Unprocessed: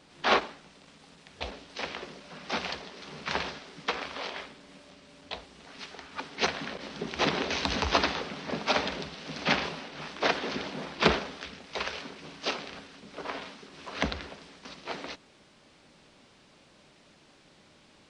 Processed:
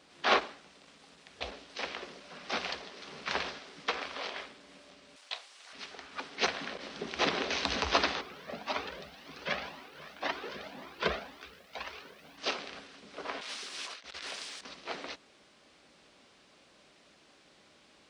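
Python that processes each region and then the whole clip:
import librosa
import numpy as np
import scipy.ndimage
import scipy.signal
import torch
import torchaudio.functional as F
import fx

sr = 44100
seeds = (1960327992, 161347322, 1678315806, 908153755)

y = fx.chain(x, sr, fx.highpass(hz=850.0, slope=12),
    fx.high_shelf(hz=5800.0, db=9.0),
    fx.doubler(ms=30.0, db=-13.5), at=(5.16, 5.73))
y = fx.chain(y, sr, fx.high_shelf(hz=4100.0, db=-8.0),
    fx.quant_dither(seeds[0], bits=10, dither='none'),
    fx.comb_cascade(direction='rising', hz=1.9), at=(8.21, 12.38))
y = fx.chain(y, sr, fx.tilt_eq(slope=4.0),
    fx.over_compress(threshold_db=-43.0, ratio=-1.0), at=(13.41, 14.61))
y = scipy.signal.sosfilt(scipy.signal.butter(2, 47.0, 'highpass', fs=sr, output='sos'), y)
y = fx.peak_eq(y, sr, hz=120.0, db=-8.5, octaves=1.9)
y = fx.notch(y, sr, hz=900.0, q=18.0)
y = y * librosa.db_to_amplitude(-1.5)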